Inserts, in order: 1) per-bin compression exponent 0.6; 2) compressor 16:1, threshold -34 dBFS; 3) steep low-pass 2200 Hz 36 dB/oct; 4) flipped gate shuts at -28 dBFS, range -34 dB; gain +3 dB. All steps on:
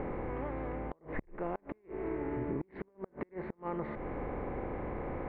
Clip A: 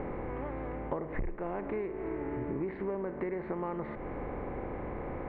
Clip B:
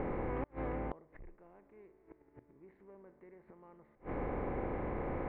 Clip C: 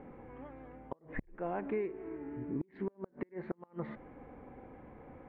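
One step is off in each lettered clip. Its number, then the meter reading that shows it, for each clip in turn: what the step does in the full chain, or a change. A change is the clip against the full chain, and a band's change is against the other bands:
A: 4, momentary loudness spread change -3 LU; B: 2, mean gain reduction 5.5 dB; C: 1, 1 kHz band -2.5 dB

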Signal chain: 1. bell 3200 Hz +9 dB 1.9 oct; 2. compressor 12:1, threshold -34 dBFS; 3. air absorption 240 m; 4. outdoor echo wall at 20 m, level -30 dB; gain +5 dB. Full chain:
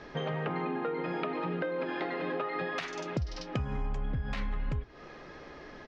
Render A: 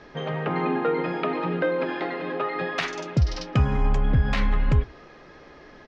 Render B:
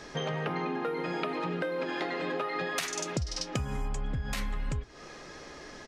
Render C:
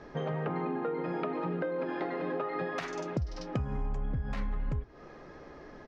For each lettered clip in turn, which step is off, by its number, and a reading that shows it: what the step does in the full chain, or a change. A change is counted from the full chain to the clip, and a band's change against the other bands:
2, mean gain reduction 6.5 dB; 3, 4 kHz band +6.0 dB; 1, 4 kHz band -7.0 dB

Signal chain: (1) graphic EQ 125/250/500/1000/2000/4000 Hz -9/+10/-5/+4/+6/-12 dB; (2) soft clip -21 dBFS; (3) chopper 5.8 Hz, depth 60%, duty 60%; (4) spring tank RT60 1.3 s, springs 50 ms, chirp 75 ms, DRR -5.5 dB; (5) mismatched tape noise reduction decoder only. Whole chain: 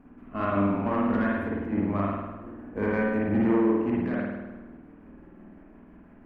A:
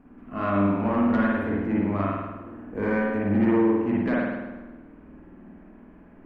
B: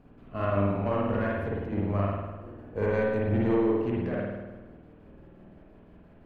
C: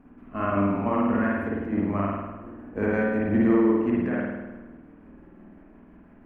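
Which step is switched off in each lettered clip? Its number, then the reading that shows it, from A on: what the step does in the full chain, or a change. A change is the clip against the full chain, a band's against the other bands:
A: 3, loudness change +2.0 LU; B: 1, loudness change -2.0 LU; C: 2, distortion -15 dB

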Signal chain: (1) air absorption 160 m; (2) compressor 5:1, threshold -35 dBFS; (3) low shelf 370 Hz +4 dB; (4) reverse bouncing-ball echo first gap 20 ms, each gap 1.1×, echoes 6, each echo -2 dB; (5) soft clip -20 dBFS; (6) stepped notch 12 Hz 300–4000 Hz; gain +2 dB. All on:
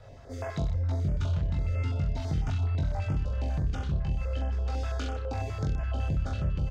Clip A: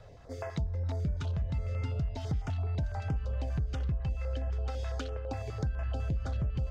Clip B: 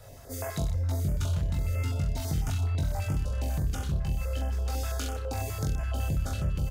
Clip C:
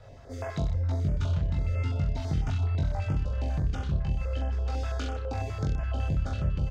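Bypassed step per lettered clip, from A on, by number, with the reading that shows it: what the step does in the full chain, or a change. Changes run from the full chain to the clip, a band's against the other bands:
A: 4, loudness change -3.5 LU; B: 1, 4 kHz band +4.0 dB; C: 5, distortion -25 dB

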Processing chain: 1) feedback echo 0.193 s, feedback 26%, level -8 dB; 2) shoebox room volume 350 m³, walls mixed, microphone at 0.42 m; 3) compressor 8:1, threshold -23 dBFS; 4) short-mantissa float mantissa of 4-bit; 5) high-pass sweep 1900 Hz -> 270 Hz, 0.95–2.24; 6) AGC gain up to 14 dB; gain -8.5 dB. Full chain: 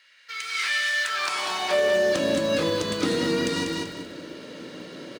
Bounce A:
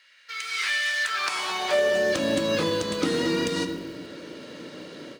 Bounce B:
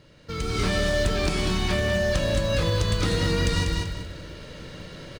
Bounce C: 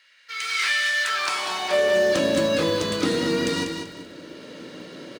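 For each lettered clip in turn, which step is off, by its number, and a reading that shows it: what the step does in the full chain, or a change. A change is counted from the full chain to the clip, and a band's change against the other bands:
1, crest factor change +1.5 dB; 5, 125 Hz band +15.0 dB; 3, mean gain reduction 3.5 dB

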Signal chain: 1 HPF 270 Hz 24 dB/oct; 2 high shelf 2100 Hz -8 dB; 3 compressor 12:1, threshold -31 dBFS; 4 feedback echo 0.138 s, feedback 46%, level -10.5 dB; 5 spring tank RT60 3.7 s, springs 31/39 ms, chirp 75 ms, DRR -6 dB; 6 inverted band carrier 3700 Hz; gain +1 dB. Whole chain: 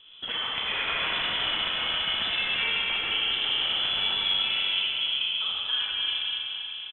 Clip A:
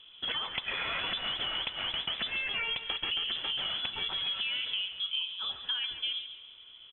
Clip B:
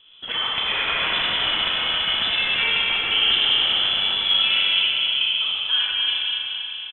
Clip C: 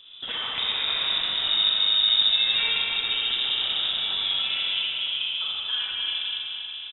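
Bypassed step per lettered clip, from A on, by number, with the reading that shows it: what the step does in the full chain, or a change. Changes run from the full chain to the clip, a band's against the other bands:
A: 5, momentary loudness spread change -1 LU; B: 3, mean gain reduction 4.5 dB; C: 1, 4 kHz band +6.0 dB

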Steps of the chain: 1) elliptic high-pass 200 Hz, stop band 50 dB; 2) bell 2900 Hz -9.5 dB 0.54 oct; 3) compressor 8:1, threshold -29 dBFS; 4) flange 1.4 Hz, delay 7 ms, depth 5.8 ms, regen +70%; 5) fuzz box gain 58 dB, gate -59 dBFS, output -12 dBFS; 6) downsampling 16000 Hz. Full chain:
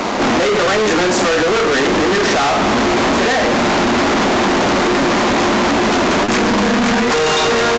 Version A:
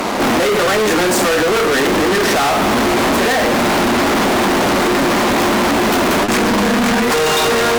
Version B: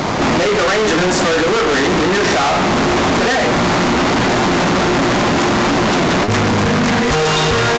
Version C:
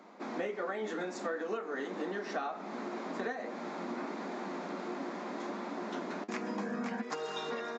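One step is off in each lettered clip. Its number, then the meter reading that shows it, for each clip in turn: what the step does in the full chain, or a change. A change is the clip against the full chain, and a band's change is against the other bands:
6, 8 kHz band +2.5 dB; 1, 125 Hz band +6.0 dB; 5, distortion -3 dB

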